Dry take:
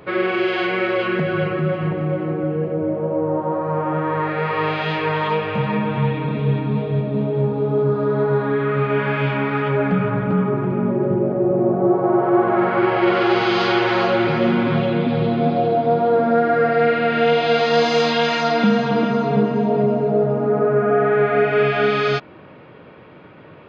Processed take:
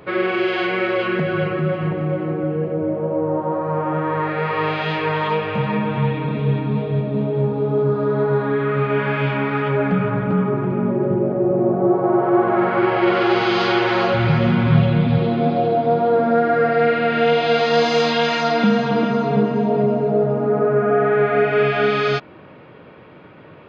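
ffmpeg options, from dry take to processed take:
-filter_complex "[0:a]asplit=3[a][b][c];[a]afade=t=out:st=14.13:d=0.02[d];[b]asubboost=boost=12:cutoff=90,afade=t=in:st=14.13:d=0.02,afade=t=out:st=15.17:d=0.02[e];[c]afade=t=in:st=15.17:d=0.02[f];[d][e][f]amix=inputs=3:normalize=0"

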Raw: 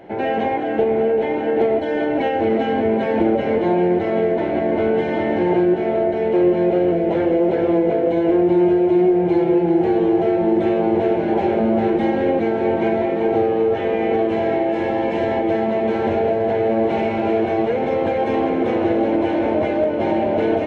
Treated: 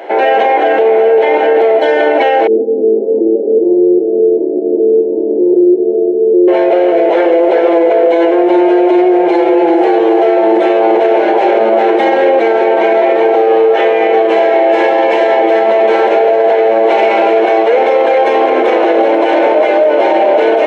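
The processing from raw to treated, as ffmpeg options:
-filter_complex "[0:a]asettb=1/sr,asplit=3[a][b][c];[a]atrim=end=2.474[d];[b]atrim=start=2.47:end=6.48,asetpts=PTS-STARTPTS,afade=t=in:d=0.004:c=qsin,afade=t=out:st=4.006:d=0.004:c=qsin,asuperpass=centerf=270:order=8:qfactor=1[e];[c]atrim=start=6.476[f];[d][e]acrossfade=d=0.004:c1=hsin:c2=qsin[g];[g][f]acrossfade=d=0.004:c1=qsin:c2=hsin,highpass=f=420:w=0.5412,highpass=f=420:w=1.3066,alimiter=level_in=18dB:limit=-1dB:release=50:level=0:latency=1,volume=-1dB"

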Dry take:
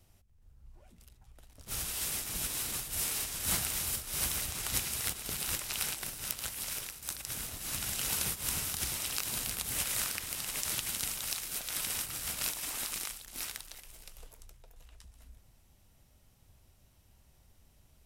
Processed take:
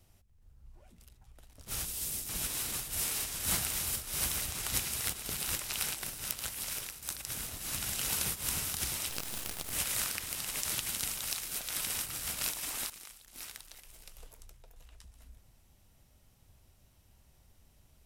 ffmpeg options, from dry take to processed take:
-filter_complex "[0:a]asettb=1/sr,asplit=3[a][b][c];[a]atrim=end=1.854[d];[b]atrim=start=1.85:end=2.29,asetpts=PTS-STARTPTS,afade=t=in:d=0.004:c=qsin,afade=t=out:st=0.436:d=0.004:c=qsin,equalizer=f=1.4k:w=0.41:g=-10[e];[c]atrim=start=2.286[f];[d][e]acrossfade=d=0.004:c1=hsin:c2=qsin[g];[g][f]acrossfade=d=0.004:c1=qsin:c2=hsin,asettb=1/sr,asplit=3[h][i][j];[h]atrim=end=9.094[k];[i]atrim=start=9.09:end=9.73,asetpts=PTS-STARTPTS,afade=t=in:d=0.004:c=qsin,afade=t=out:st=0.636:d=0.004:c=qsin,aeval=exprs='max(val(0),0)':c=same[l];[j]atrim=start=9.726[m];[k][l]acrossfade=d=0.004:c1=hsin:c2=qsin[n];[n][m]acrossfade=d=0.004:c1=qsin:c2=hsin,asplit=2[o][p];[o]atrim=end=12.9,asetpts=PTS-STARTPTS,afade=t=out:st=12.896:d=0.004:c=hsin:silence=0.199526[q];[p]atrim=start=12.9,asetpts=PTS-STARTPTS,afade=t=in:d=1.43:silence=0.199526[r];[q][r]concat=n=2:v=0:a=1"

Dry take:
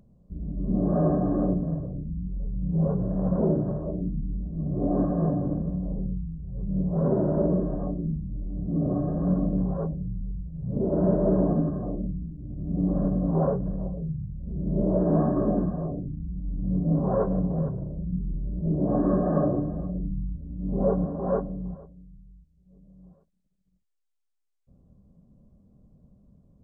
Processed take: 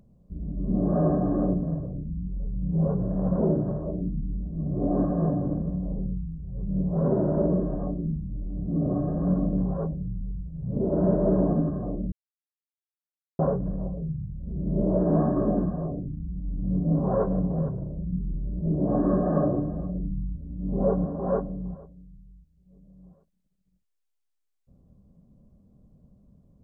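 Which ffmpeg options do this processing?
-filter_complex "[0:a]asplit=3[a][b][c];[a]atrim=end=12.12,asetpts=PTS-STARTPTS,afade=t=out:st=12.116:d=0.004:c=hsin[d];[b]atrim=start=12.12:end=13.39,asetpts=PTS-STARTPTS,volume=0[e];[c]atrim=start=13.39,asetpts=PTS-STARTPTS,afade=t=in:d=0.004:c=hsin[f];[d][e][f]concat=n=3:v=0:a=1"

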